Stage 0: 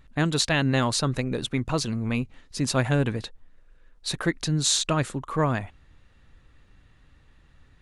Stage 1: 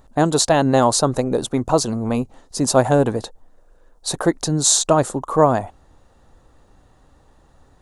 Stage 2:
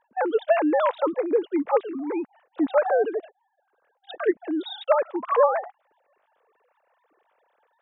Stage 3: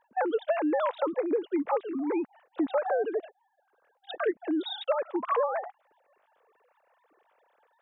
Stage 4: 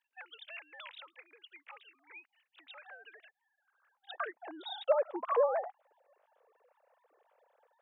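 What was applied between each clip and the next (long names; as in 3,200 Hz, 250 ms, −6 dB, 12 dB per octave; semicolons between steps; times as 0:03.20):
drawn EQ curve 140 Hz 0 dB, 780 Hz +13 dB, 2,300 Hz −8 dB, 7,000 Hz +8 dB; level +2 dB
three sine waves on the formant tracks; level −5.5 dB
downward compressor 6 to 1, threshold −24 dBFS, peak gain reduction 10.5 dB
high-pass filter sweep 2,700 Hz → 520 Hz, 0:02.78–0:05.12; level −7 dB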